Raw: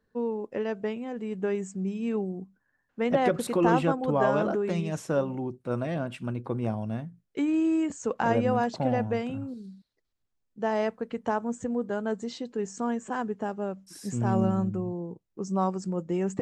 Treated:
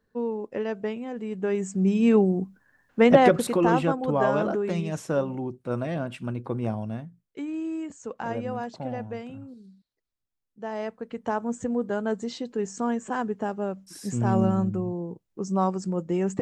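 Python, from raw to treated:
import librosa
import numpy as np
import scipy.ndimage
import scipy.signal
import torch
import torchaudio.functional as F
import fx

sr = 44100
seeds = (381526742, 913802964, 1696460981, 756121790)

y = fx.gain(x, sr, db=fx.line((1.43, 1.0), (1.96, 10.5), (3.01, 10.5), (3.65, 1.0), (6.79, 1.0), (7.4, -6.5), (10.63, -6.5), (11.56, 2.5)))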